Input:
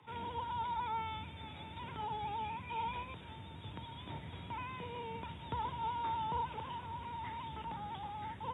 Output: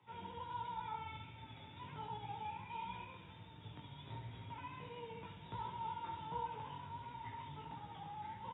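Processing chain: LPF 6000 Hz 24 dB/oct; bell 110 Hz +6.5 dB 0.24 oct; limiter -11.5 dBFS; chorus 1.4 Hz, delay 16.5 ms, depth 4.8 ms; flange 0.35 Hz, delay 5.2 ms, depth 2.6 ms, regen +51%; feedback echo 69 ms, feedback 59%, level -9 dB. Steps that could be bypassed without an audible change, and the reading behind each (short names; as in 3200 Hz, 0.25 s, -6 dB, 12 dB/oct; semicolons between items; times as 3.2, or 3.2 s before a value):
limiter -11.5 dBFS: input peak -26.0 dBFS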